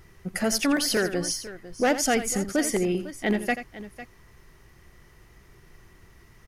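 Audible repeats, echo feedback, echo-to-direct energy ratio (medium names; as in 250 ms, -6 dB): 2, no regular repeats, -10.5 dB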